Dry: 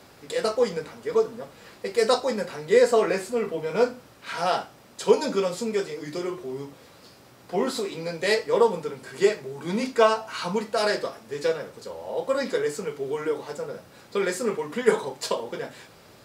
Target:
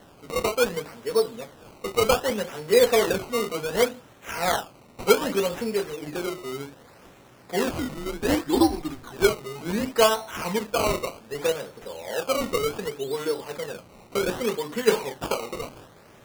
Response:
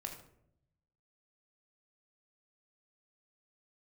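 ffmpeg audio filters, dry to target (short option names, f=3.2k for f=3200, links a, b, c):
-filter_complex "[0:a]asettb=1/sr,asplit=3[a][b][c];[a]atrim=end=7.734[d];[b]atrim=start=7.73:end=9.12,asetpts=PTS-STARTPTS,afade=t=in:d=0.004:c=qsin,afade=t=out:st=1.386:d=0.004:c=qsin,afreqshift=-140[e];[c]atrim=start=9.116[f];[d][e]acrossfade=d=0.004:c1=hsin:c2=qsin[g];[g][f]acrossfade=d=0.004:c1=qsin:c2=hsin,acrusher=samples=18:mix=1:aa=0.000001:lfo=1:lforange=18:lforate=0.66"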